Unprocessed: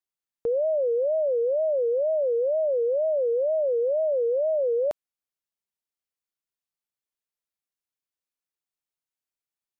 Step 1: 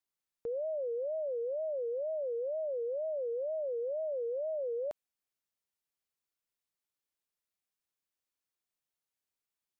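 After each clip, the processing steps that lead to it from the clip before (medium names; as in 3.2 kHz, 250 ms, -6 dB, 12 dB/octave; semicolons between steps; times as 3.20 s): peak limiter -32 dBFS, peak gain reduction 11.5 dB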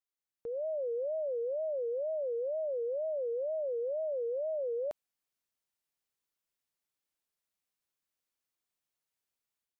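level rider gain up to 8 dB; trim -7 dB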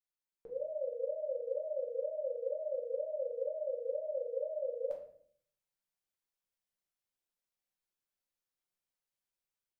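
simulated room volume 77 m³, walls mixed, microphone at 0.91 m; trim -8 dB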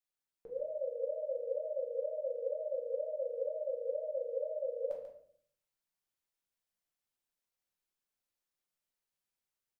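delay 140 ms -9 dB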